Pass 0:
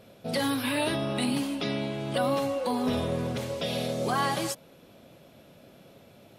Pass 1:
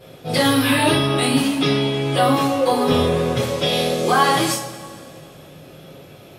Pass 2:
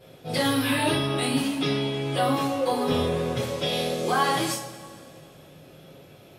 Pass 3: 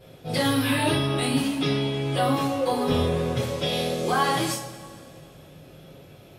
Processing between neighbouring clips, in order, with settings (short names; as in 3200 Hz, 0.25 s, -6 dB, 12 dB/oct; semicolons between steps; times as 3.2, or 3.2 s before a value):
two-slope reverb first 0.35 s, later 2.2 s, from -19 dB, DRR -9 dB; gain +2.5 dB
notch 1200 Hz, Q 24; gain -7 dB
low shelf 87 Hz +10.5 dB